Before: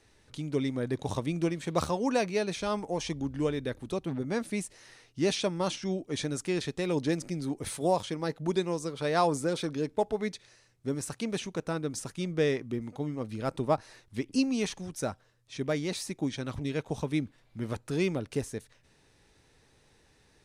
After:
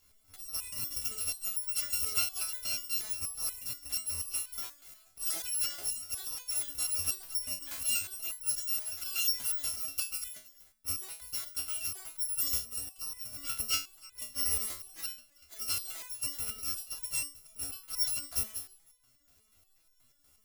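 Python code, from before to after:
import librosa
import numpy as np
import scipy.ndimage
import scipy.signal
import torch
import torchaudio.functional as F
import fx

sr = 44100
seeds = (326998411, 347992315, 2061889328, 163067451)

y = fx.bit_reversed(x, sr, seeds[0], block=256)
y = y + 10.0 ** (-22.0 / 20.0) * np.pad(y, (int(323 * sr / 1000.0), 0))[:len(y)]
y = fx.resonator_held(y, sr, hz=8.3, low_hz=71.0, high_hz=500.0)
y = y * 10.0 ** (7.0 / 20.0)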